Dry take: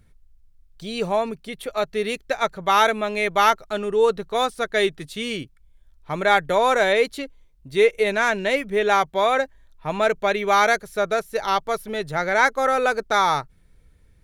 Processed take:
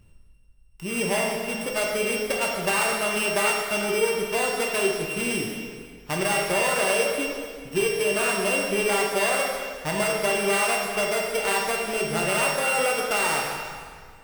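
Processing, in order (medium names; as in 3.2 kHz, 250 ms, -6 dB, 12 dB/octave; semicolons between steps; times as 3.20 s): sorted samples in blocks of 16 samples; compression, threshold -24 dBFS, peak gain reduction 12 dB; plate-style reverb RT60 2 s, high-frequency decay 0.85×, DRR -1.5 dB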